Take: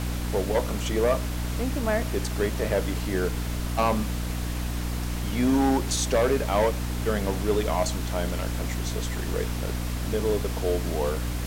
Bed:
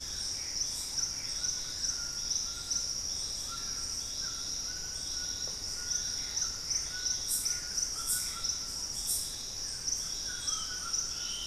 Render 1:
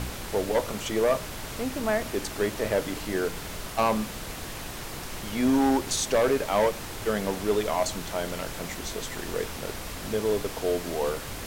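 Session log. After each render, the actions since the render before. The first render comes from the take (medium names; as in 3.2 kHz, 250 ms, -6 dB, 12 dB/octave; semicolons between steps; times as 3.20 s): de-hum 60 Hz, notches 5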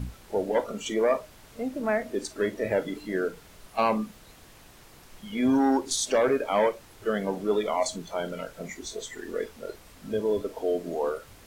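noise print and reduce 15 dB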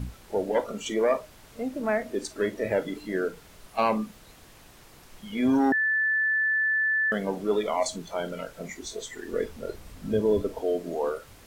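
5.72–7.12 s: bleep 1.75 kHz -21.5 dBFS; 9.32–10.61 s: bass shelf 260 Hz +10 dB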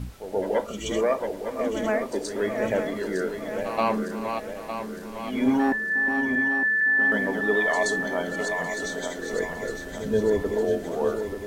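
backward echo that repeats 454 ms, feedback 71%, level -6 dB; reverse echo 126 ms -10.5 dB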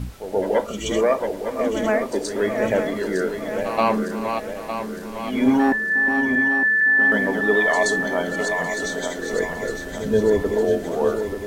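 trim +4.5 dB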